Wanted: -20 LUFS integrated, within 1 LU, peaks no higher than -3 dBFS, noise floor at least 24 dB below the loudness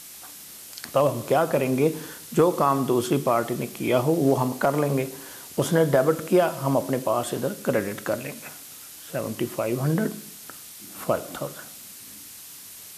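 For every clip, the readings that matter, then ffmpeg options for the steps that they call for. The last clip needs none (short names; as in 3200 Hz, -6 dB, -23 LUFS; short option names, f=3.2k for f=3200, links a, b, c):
noise floor -43 dBFS; noise floor target -49 dBFS; loudness -24.5 LUFS; peak -9.0 dBFS; loudness target -20.0 LUFS
-> -af "afftdn=nr=6:nf=-43"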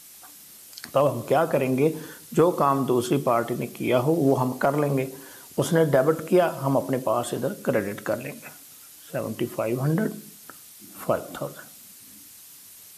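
noise floor -47 dBFS; noise floor target -49 dBFS
-> -af "afftdn=nr=6:nf=-47"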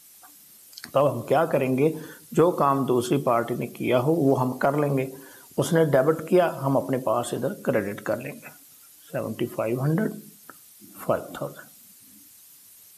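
noise floor -51 dBFS; loudness -24.5 LUFS; peak -9.0 dBFS; loudness target -20.0 LUFS
-> -af "volume=4.5dB"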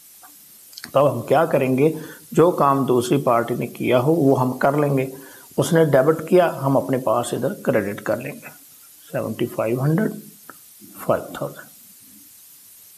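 loudness -20.0 LUFS; peak -4.5 dBFS; noise floor -47 dBFS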